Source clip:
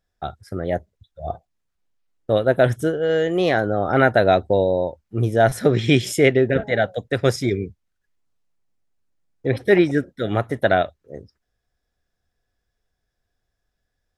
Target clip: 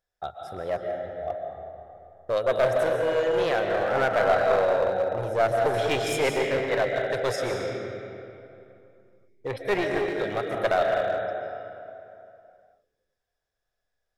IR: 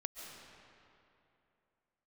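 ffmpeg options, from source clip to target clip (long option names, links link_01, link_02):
-filter_complex "[1:a]atrim=start_sample=2205[link_01];[0:a][link_01]afir=irnorm=-1:irlink=0,asettb=1/sr,asplit=3[link_02][link_03][link_04];[link_02]atrim=end=3.594[link_05];[link_03]atrim=start=3.59:end=5.74,asetpts=PTS-STARTPTS,afade=type=in:duration=0.004:curve=qsin,afade=type=out:start_time=2.146:duration=0.004:curve=qsin,acrossover=split=2900[link_06][link_07];[link_07]acompressor=threshold=-47dB:ratio=4:attack=1:release=60[link_08];[link_06][link_08]amix=inputs=2:normalize=0[link_09];[link_04]atrim=start=5.736[link_10];[link_05][link_09]acrossfade=duration=0.004:curve1=hsin:curve2=qsin[link_11];[link_11][link_10]acrossfade=duration=0.004:curve1=qsin:curve2=hsin,aeval=exprs='clip(val(0),-1,0.0944)':channel_layout=same,lowshelf=frequency=380:width_type=q:width=1.5:gain=-7.5,volume=-2dB"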